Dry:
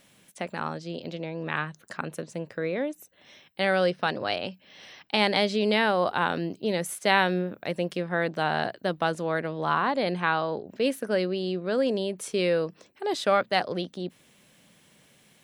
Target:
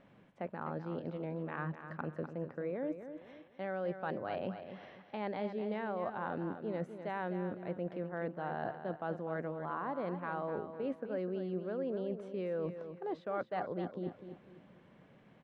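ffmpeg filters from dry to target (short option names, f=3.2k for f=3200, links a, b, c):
-af "lowpass=1.3k,areverse,acompressor=threshold=-37dB:ratio=5,areverse,aecho=1:1:251|502|753|1004:0.335|0.117|0.041|0.0144,volume=1dB"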